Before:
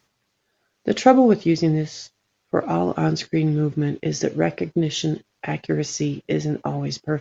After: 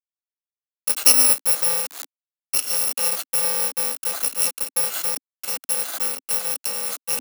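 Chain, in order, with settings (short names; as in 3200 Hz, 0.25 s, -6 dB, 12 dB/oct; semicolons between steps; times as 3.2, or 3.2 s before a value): FFT order left unsorted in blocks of 128 samples; bit-crush 5-bit; elliptic high-pass 270 Hz, stop band 80 dB; reverse; upward compressor, threshold -24 dBFS; reverse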